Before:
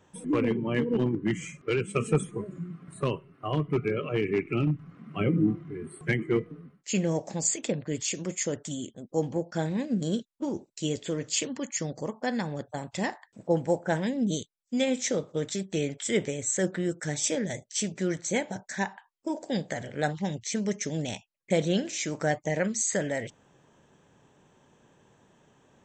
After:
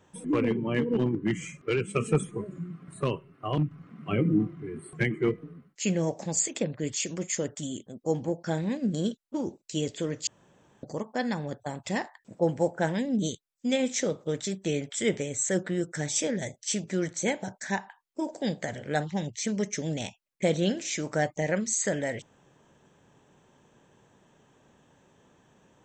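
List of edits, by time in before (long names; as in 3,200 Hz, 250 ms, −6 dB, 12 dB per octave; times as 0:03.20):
0:03.58–0:04.66: remove
0:11.35–0:11.91: fill with room tone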